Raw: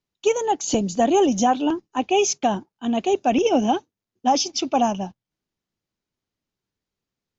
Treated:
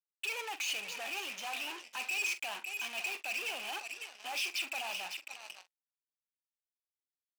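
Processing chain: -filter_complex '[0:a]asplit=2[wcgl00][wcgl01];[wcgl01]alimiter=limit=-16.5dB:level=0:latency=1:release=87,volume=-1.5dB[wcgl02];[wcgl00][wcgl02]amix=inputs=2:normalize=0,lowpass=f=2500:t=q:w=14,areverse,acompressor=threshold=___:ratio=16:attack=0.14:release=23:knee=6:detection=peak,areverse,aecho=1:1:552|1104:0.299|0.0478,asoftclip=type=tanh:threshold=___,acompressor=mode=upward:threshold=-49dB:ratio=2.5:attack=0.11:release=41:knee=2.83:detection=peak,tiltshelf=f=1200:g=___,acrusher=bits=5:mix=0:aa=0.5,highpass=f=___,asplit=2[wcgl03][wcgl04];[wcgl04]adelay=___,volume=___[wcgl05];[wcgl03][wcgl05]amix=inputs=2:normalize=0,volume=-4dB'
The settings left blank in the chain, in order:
-24dB, -29.5dB, -5.5, 680, 44, -13dB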